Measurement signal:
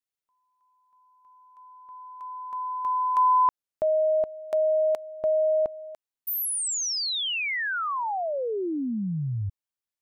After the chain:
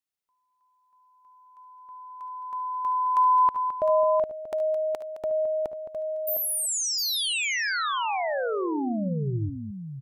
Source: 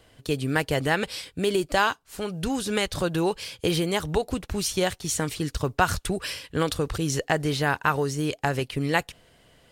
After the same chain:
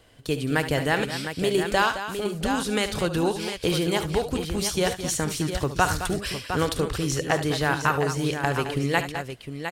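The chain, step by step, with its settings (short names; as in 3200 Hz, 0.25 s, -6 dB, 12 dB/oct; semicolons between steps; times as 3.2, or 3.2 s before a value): tapped delay 57/72/215/708 ms -18/-12/-11/-8.5 dB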